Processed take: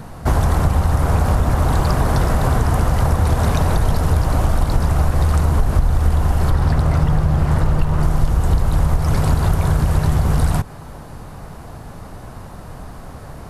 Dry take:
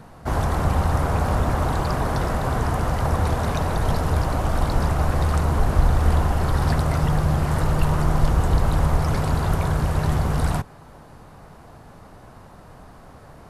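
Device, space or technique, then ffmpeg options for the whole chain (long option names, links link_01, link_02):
ASMR close-microphone chain: -filter_complex "[0:a]asettb=1/sr,asplit=3[link_01][link_02][link_03];[link_01]atrim=end=6.504[link_04];[link_02]atrim=start=6.5:end=8.03,asetpts=PTS-STARTPTS,afade=type=in:duration=0.004:curve=qsin,afade=type=out:start_time=1.526:duration=0.004:curve=qsin,aemphasis=mode=reproduction:type=cd[link_05];[link_03]atrim=start=8.026[link_06];[link_04][link_05]acrossfade=duration=0.004:curve1=hsin:curve2=qsin[link_07];[link_07][link_06]acrossfade=duration=0.004:curve1=qsin:curve2=hsin,lowshelf=frequency=160:gain=6.5,acompressor=threshold=-19dB:ratio=5,highshelf=frequency=6100:gain=6,volume=7dB"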